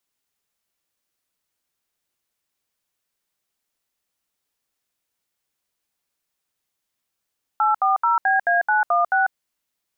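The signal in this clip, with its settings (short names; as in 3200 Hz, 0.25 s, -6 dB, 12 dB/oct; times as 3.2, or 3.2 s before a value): DTMF "840BA916", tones 0.146 s, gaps 71 ms, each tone -18 dBFS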